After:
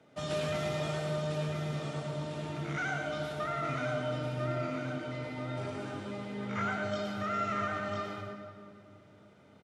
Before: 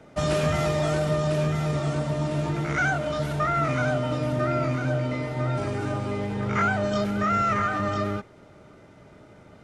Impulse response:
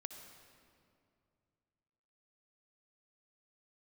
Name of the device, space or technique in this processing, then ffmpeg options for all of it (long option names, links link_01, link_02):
PA in a hall: -filter_complex "[0:a]highpass=110,equalizer=frequency=3400:width_type=o:width=0.72:gain=5.5,aecho=1:1:113:0.562[link_01];[1:a]atrim=start_sample=2205[link_02];[link_01][link_02]afir=irnorm=-1:irlink=0,volume=-7dB"